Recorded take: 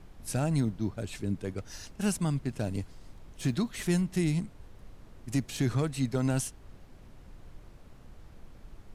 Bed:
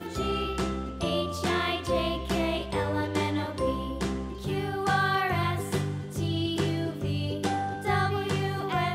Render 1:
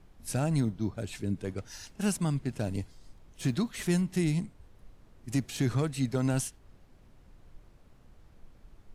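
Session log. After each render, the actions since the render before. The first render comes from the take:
noise reduction from a noise print 6 dB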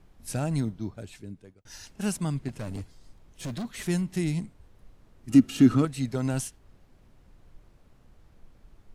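0:00.59–0:01.65: fade out
0:02.48–0:03.65: hard clipping −30.5 dBFS
0:05.29–0:05.85: hollow resonant body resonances 260/1,300/2,800 Hz, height 16 dB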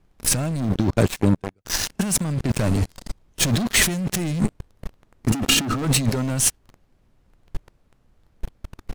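leveller curve on the samples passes 5
compressor whose output falls as the input rises −21 dBFS, ratio −1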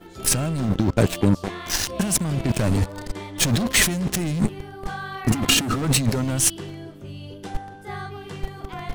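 mix in bed −7.5 dB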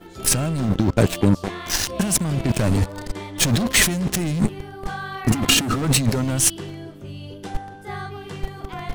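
level +1.5 dB

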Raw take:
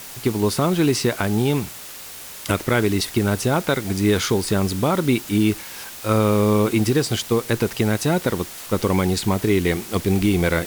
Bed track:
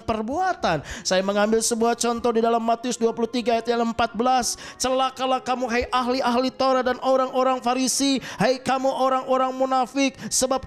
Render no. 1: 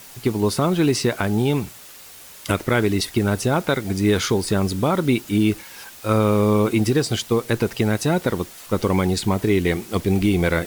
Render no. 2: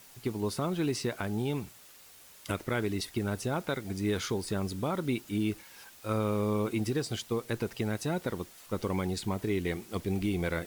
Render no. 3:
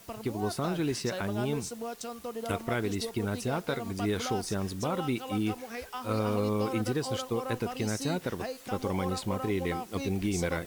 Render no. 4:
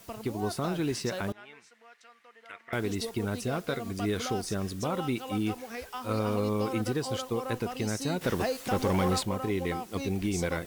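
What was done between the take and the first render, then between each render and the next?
broadband denoise 6 dB, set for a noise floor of −37 dBFS
level −12 dB
mix in bed track −17 dB
0:01.32–0:02.73: resonant band-pass 1,900 Hz, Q 3.4; 0:03.36–0:04.84: notch filter 890 Hz, Q 6.3; 0:08.21–0:09.23: leveller curve on the samples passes 2

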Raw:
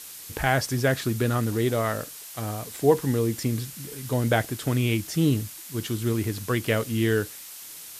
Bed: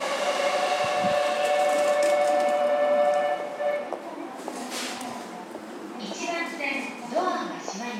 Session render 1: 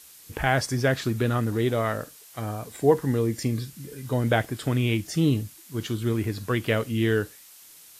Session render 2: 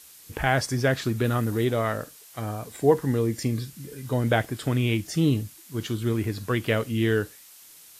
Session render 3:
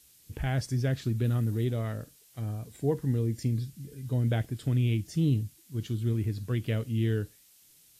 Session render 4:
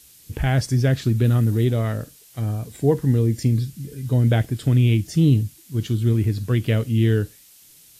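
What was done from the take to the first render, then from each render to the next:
noise reduction from a noise print 8 dB
0:01.24–0:01.65: high-shelf EQ 11,000 Hz +8.5 dB
drawn EQ curve 120 Hz 0 dB, 1,100 Hz −17 dB, 3,000 Hz −10 dB
level +9.5 dB

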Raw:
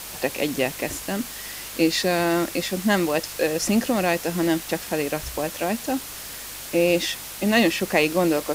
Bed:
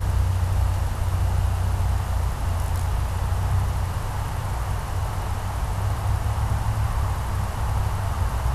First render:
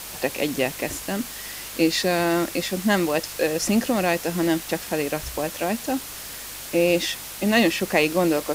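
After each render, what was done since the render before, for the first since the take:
no processing that can be heard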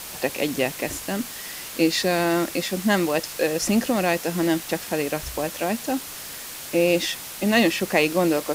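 hum removal 50 Hz, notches 2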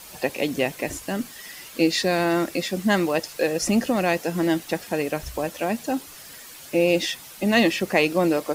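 broadband denoise 9 dB, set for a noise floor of −37 dBFS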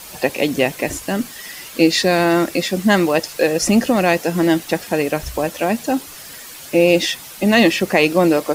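level +6.5 dB
brickwall limiter −1 dBFS, peak gain reduction 2.5 dB

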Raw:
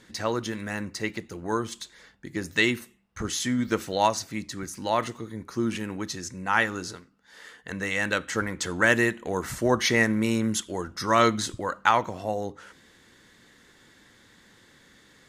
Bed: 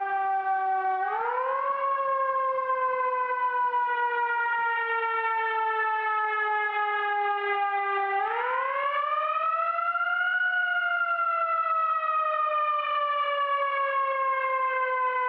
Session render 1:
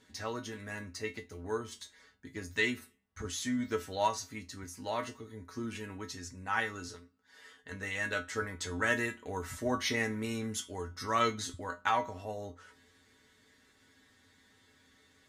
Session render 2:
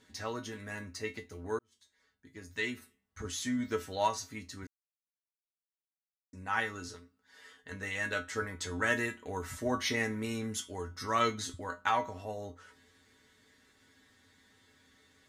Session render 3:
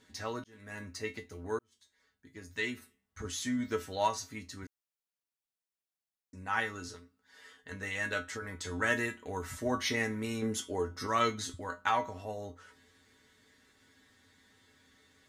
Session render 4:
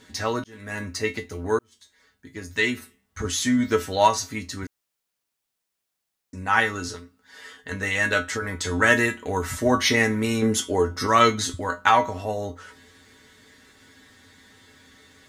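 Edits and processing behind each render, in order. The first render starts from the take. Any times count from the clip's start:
tuned comb filter 87 Hz, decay 0.17 s, harmonics odd, mix 90%
0:01.59–0:03.35: fade in; 0:04.67–0:06.33: silence
0:00.44–0:00.85: fade in; 0:08.21–0:08.65: downward compressor, threshold −36 dBFS; 0:10.42–0:11.07: parametric band 430 Hz +8 dB 2.1 octaves
level +12 dB

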